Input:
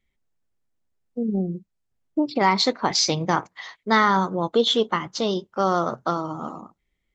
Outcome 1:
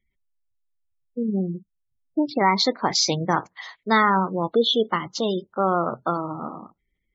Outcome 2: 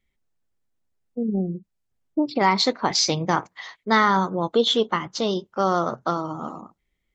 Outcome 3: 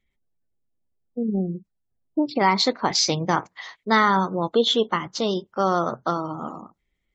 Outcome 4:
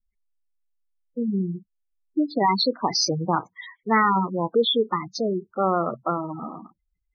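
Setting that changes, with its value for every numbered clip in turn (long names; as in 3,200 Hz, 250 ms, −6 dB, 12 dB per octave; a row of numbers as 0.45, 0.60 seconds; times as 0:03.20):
gate on every frequency bin, under each frame's peak: −25, −55, −40, −10 decibels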